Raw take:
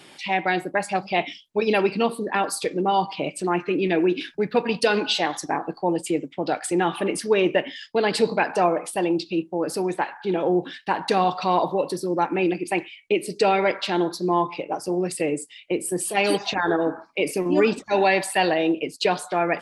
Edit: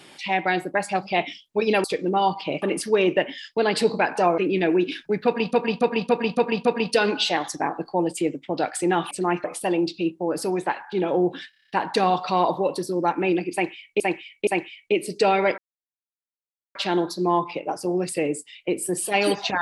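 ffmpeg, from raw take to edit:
-filter_complex "[0:a]asplit=20[a][b][c][d][e][f][g][h][i][j][k][l][m][n][o][p][q][r][s][t];[a]atrim=end=1.842[u];[b]atrim=start=2.558:end=3.342[v];[c]atrim=start=6.998:end=8.762[w];[d]atrim=start=3.668:end=4.822[x];[e]atrim=start=4.538:end=4.822[y];[f]atrim=start=4.538:end=4.822[z];[g]atrim=start=4.538:end=4.822[aa];[h]atrim=start=4.538:end=4.822[ab];[i]atrim=start=4.538:end=7.002[ac];[j]atrim=start=3.338:end=3.672[ad];[k]atrim=start=8.758:end=10.852[ae];[l]atrim=start=10.818:end=10.852[af];[m]atrim=start=10.818:end=10.852[ag];[n]atrim=start=10.818:end=10.852[ah];[o]atrim=start=10.818:end=10.852[ai];[p]atrim=start=10.818:end=10.852[aj];[q]atrim=start=10.818:end=13.142[ak];[r]atrim=start=12.668:end=13.142[al];[s]atrim=start=12.668:end=13.78,asetpts=PTS-STARTPTS,afade=t=out:st=1.108:d=0.004:c=hsin,apad=pad_dur=1.17[am];[t]atrim=start=13.78,asetpts=PTS-STARTPTS,afade=t=in:d=0.004:c=hsin[an];[u][v]acrossfade=d=0.004:c1=hsin:c2=hsin[ao];[ao][w]acrossfade=d=0.004:c1=hsin:c2=hsin[ap];[ap][x]acrossfade=d=0.004:c1=hsin:c2=hsin[aq];[aq][y]acrossfade=d=0.004:c1=hsin:c2=hsin[ar];[ar][z]acrossfade=d=0.004:c1=hsin:c2=hsin[as];[as][aa]acrossfade=d=0.004:c1=hsin:c2=hsin[at];[at][ab]acrossfade=d=0.004:c1=hsin:c2=hsin[au];[au][ac]acrossfade=d=0.004:c1=hsin:c2=hsin[av];[av][ad]acrossfade=d=0.004:c1=hsin:c2=hsin[aw];[aw][ae]acrossfade=d=0.004:c1=hsin:c2=hsin[ax];[ax][af]acrossfade=d=0.004:c1=hsin:c2=hsin[ay];[ay][ag]acrossfade=d=0.004:c1=hsin:c2=hsin[az];[az][ah]acrossfade=d=0.004:c1=hsin:c2=hsin[ba];[ba][ai]acrossfade=d=0.004:c1=hsin:c2=hsin[bb];[bb][aj]acrossfade=d=0.004:c1=hsin:c2=hsin[bc];[bc][ak]acrossfade=d=0.004:c1=hsin:c2=hsin[bd];[bd][al]acrossfade=d=0.004:c1=hsin:c2=hsin[be];[am][an]concat=n=2:v=0:a=1[bf];[be][bf]acrossfade=d=0.004:c1=hsin:c2=hsin"

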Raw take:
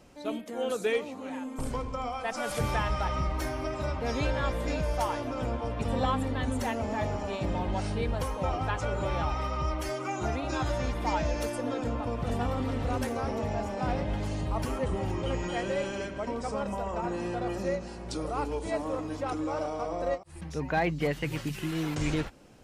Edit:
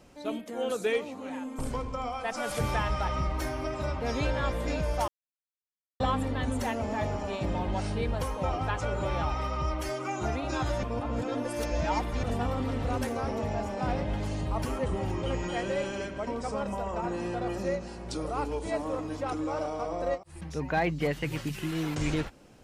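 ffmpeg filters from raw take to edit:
-filter_complex "[0:a]asplit=5[a][b][c][d][e];[a]atrim=end=5.08,asetpts=PTS-STARTPTS,afade=t=out:st=5.076:d=0.004:c=hsin[f];[b]atrim=start=5.08:end=6,asetpts=PTS-STARTPTS,volume=0[g];[c]atrim=start=6:end=10.832,asetpts=PTS-STARTPTS,afade=t=in:d=0.004:c=hsin[h];[d]atrim=start=10.828:end=12.232,asetpts=PTS-STARTPTS,areverse[i];[e]atrim=start=12.228[j];[f][g][h]concat=n=3:v=0:a=1[k];[k][i]acrossfade=d=0.004:c1=hsin:c2=hsin[l];[l][j]acrossfade=d=0.004:c1=hsin:c2=hsin"

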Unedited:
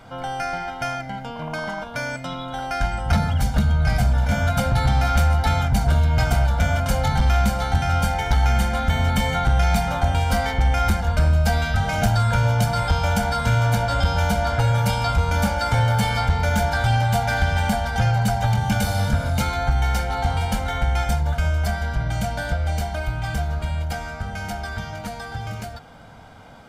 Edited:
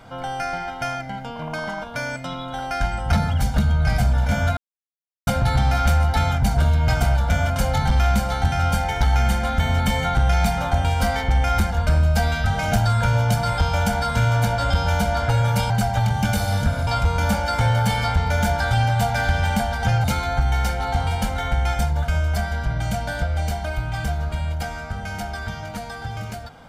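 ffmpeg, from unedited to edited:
-filter_complex "[0:a]asplit=5[a][b][c][d][e];[a]atrim=end=4.57,asetpts=PTS-STARTPTS,afade=t=out:st=4.566:d=0.004:c=hsin,apad=pad_dur=0.7[f];[b]atrim=start=4.57:end=15.002,asetpts=PTS-STARTPTS,afade=t=in:d=0.004:c=hsin[g];[c]atrim=start=18.168:end=19.342[h];[d]atrim=start=14.998:end=18.172[i];[e]atrim=start=19.338[j];[f][g]concat=n=2:v=0:a=1[k];[k][h]acrossfade=d=0.004:c1=hsin:c2=hsin[l];[l][i]acrossfade=d=0.004:c1=hsin:c2=hsin[m];[m][j]acrossfade=d=0.004:c1=hsin:c2=hsin"

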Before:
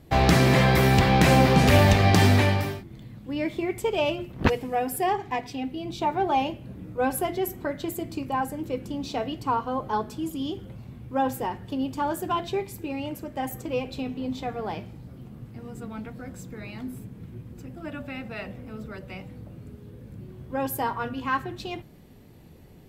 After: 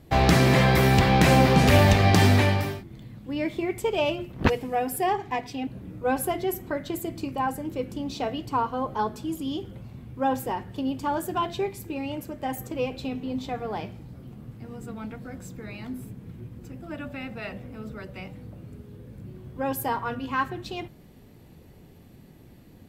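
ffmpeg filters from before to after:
-filter_complex "[0:a]asplit=2[a][b];[a]atrim=end=5.672[c];[b]atrim=start=6.608[d];[c][d]acrossfade=d=0.004:c1=hsin:c2=hsin"

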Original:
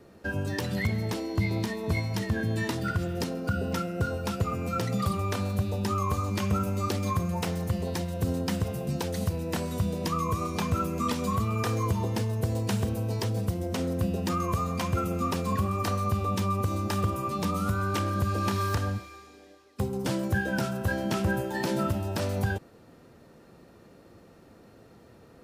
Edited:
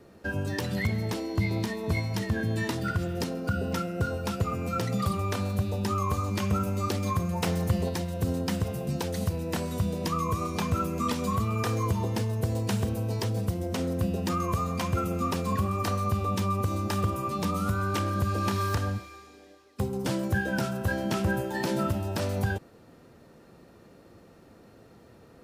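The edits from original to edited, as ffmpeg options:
-filter_complex "[0:a]asplit=3[a][b][c];[a]atrim=end=7.432[d];[b]atrim=start=7.428:end=7.892,asetpts=PTS-STARTPTS,volume=3dB[e];[c]atrim=start=7.888[f];[d][e]acrossfade=d=0.004:c1=hsin:c2=hsin[g];[g][f]acrossfade=d=0.004:c1=hsin:c2=hsin"

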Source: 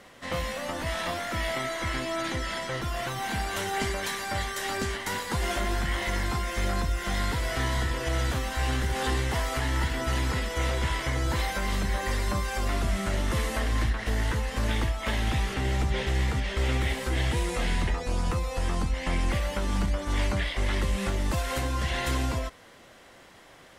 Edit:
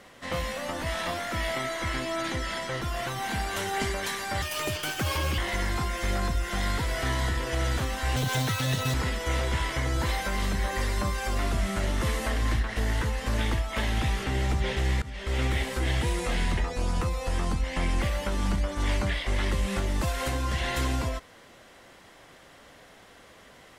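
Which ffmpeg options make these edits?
-filter_complex "[0:a]asplit=6[a][b][c][d][e][f];[a]atrim=end=4.424[g];[b]atrim=start=4.42:end=5.92,asetpts=PTS-STARTPTS,asetrate=68796,aresample=44100[h];[c]atrim=start=5.916:end=8.704[i];[d]atrim=start=8.7:end=10.24,asetpts=PTS-STARTPTS,asetrate=87318,aresample=44100[j];[e]atrim=start=10.236:end=16.32,asetpts=PTS-STARTPTS,afade=t=out:st=6.08:d=0.004:c=hsin:silence=0.141254[k];[f]atrim=start=16.32,asetpts=PTS-STARTPTS,afade=t=in:d=0.41:silence=0.141254[l];[g][h]acrossfade=d=0.004:c1=hsin:c2=hsin[m];[m][i]acrossfade=d=0.004:c1=hsin:c2=hsin[n];[n][j]acrossfade=d=0.004:c1=hsin:c2=hsin[o];[k][l]concat=n=2:v=0:a=1[p];[o][p]acrossfade=d=0.004:c1=hsin:c2=hsin"

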